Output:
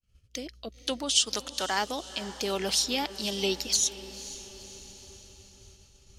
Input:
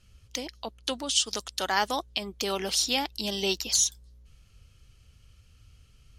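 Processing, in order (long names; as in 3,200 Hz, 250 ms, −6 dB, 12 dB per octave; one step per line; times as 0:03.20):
rotating-speaker cabinet horn 0.6 Hz, later 7 Hz, at 0:02.52
feedback delay with all-pass diffusion 505 ms, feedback 57%, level −15 dB
downward expander −51 dBFS
level +1.5 dB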